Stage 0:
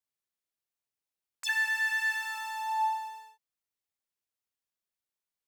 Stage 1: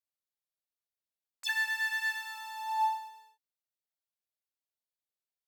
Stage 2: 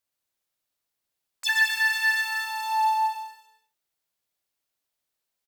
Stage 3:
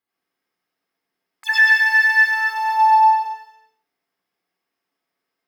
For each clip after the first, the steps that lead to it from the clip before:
fifteen-band graphic EQ 630 Hz +7 dB, 4 kHz +6 dB, 16 kHz +7 dB; upward expansion 1.5:1, over -40 dBFS; trim -2 dB
in parallel at -7 dB: hard clipper -32 dBFS, distortion -9 dB; on the sum: bouncing-ball echo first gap 120 ms, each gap 0.75×, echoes 5; trim +5.5 dB
reverberation RT60 0.25 s, pre-delay 86 ms, DRR -4.5 dB; trim -6.5 dB

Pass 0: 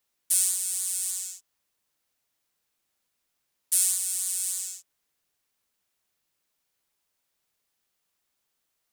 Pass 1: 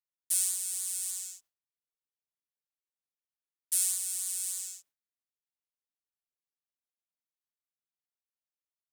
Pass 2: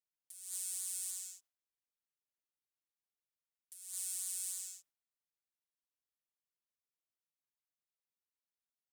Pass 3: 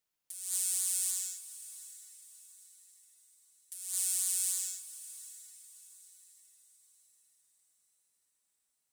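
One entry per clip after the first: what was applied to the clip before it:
gate with hold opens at -35 dBFS; trim -5 dB
compressor with a negative ratio -34 dBFS, ratio -0.5; trim -8 dB
echo that smears into a reverb 713 ms, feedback 43%, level -15.5 dB; trim +8.5 dB

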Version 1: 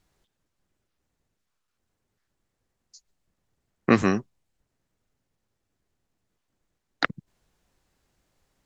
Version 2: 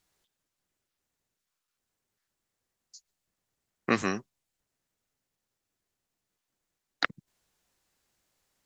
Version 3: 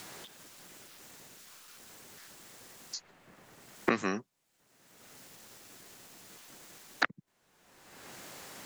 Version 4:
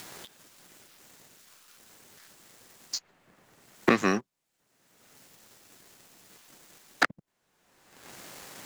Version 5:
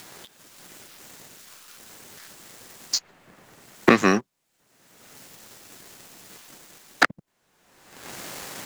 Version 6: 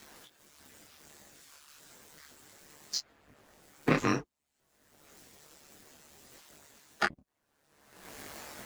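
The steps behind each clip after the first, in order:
tilt EQ +2 dB/octave; trim -5 dB
three bands compressed up and down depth 100%; trim +1.5 dB
waveshaping leveller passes 2
level rider gain up to 9 dB
coarse spectral quantiser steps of 15 dB; ring modulator 73 Hz; detune thickener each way 21 cents; trim -2 dB

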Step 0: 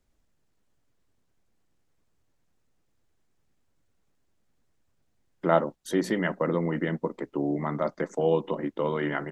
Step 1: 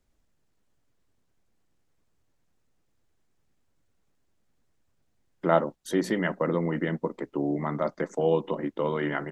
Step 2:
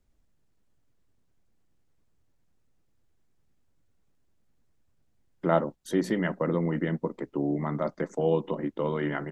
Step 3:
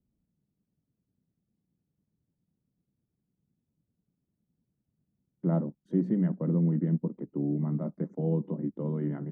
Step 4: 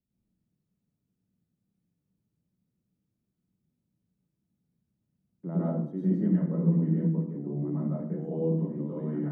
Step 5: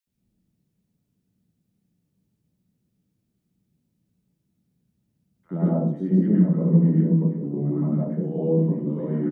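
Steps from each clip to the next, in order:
no audible change
bass shelf 280 Hz +6 dB; trim -3 dB
band-pass filter 180 Hz, Q 2; trim +5 dB
reverberation RT60 0.60 s, pre-delay 98 ms, DRR -8 dB; trim -9 dB
bands offset in time highs, lows 70 ms, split 1.2 kHz; trim +7 dB

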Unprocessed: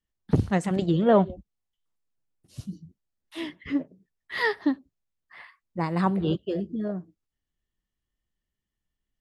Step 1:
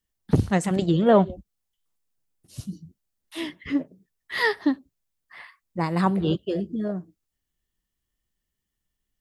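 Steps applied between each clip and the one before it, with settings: treble shelf 5.8 kHz +8 dB; trim +2 dB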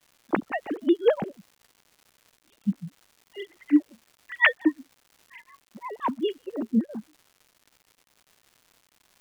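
formants replaced by sine waves; tremolo 5.6 Hz, depth 99%; crackle 290 per s -45 dBFS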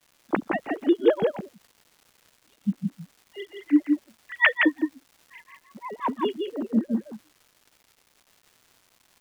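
delay 167 ms -4 dB

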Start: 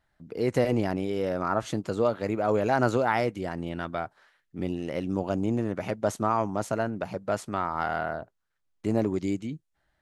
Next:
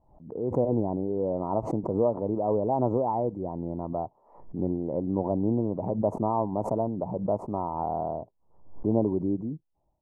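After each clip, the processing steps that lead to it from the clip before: level rider gain up to 11.5 dB; elliptic low-pass 970 Hz, stop band 40 dB; swell ahead of each attack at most 95 dB/s; trim -8.5 dB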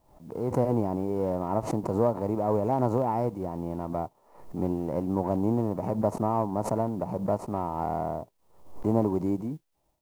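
formants flattened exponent 0.6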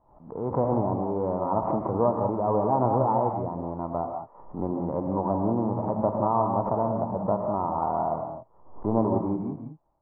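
four-pole ladder low-pass 1.3 kHz, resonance 45%; gated-style reverb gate 210 ms rising, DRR 3 dB; trim +7.5 dB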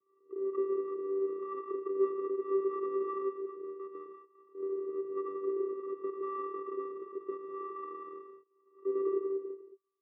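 vocoder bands 8, square 389 Hz; trim -8.5 dB

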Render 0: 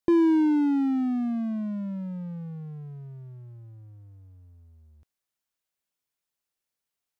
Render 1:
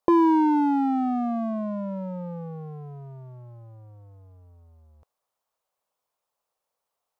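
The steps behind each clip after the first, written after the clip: high-order bell 750 Hz +13.5 dB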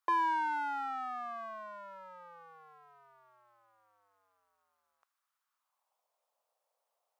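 high-pass sweep 1.4 kHz -> 600 Hz, 5.49–6.09 s; trim -3.5 dB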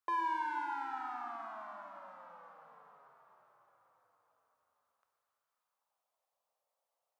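plate-style reverb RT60 4.1 s, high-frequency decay 0.75×, DRR 3 dB; trim -5.5 dB

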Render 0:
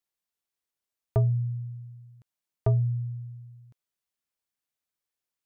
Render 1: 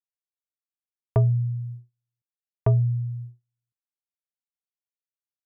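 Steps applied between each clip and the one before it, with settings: gate -39 dBFS, range -41 dB; trim +3.5 dB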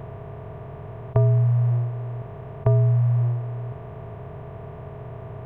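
spectral levelling over time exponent 0.2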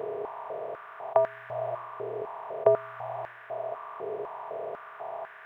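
step-sequenced high-pass 4 Hz 440–1600 Hz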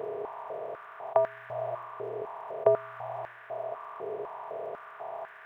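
crackle 51 per s -57 dBFS; trim -1.5 dB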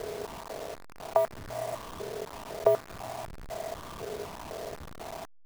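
send-on-delta sampling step -36 dBFS

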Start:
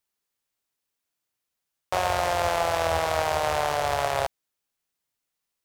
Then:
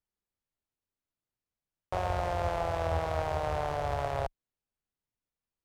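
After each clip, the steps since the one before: tilt EQ -3 dB/octave; trim -8.5 dB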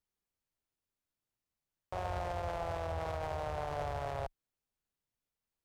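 peak limiter -28 dBFS, peak gain reduction 11.5 dB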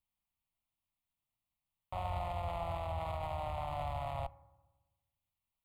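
static phaser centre 1.6 kHz, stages 6; reverberation RT60 1.2 s, pre-delay 3 ms, DRR 18.5 dB; trim +1.5 dB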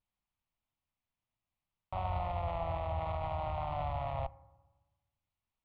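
vibrato 0.64 Hz 32 cents; distance through air 220 m; trim +3 dB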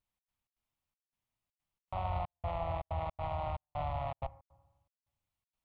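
trance gate "xx.xx.xxxx..xx" 160 bpm -60 dB

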